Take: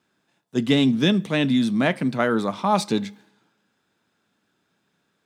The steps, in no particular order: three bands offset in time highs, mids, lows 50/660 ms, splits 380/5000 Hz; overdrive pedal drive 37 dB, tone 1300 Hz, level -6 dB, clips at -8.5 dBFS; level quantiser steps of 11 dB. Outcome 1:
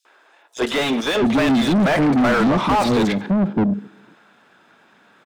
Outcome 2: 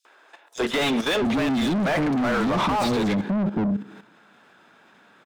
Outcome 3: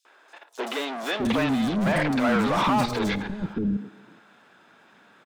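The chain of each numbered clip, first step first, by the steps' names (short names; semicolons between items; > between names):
level quantiser > three bands offset in time > overdrive pedal; three bands offset in time > overdrive pedal > level quantiser; overdrive pedal > level quantiser > three bands offset in time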